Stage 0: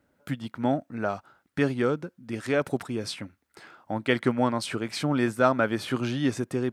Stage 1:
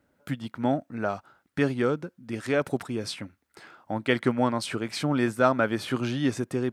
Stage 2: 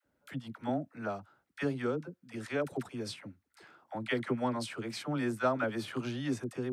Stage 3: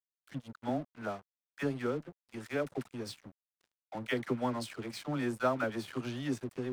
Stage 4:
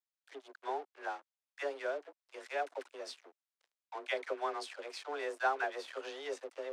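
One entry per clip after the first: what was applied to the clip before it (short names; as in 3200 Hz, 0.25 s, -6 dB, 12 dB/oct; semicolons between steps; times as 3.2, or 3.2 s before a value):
nothing audible
dispersion lows, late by 55 ms, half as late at 550 Hz; gain -8 dB
crossover distortion -49 dBFS
BPF 350–7600 Hz; frequency shift +140 Hz; gain -1 dB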